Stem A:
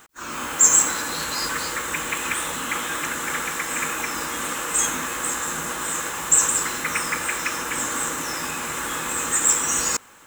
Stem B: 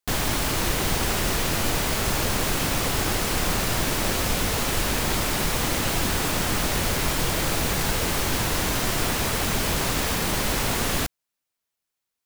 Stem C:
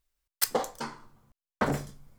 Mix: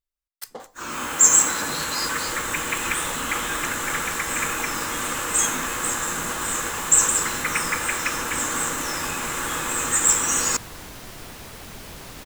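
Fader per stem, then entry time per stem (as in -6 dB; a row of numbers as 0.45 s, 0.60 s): +0.5 dB, -15.0 dB, -10.5 dB; 0.60 s, 2.20 s, 0.00 s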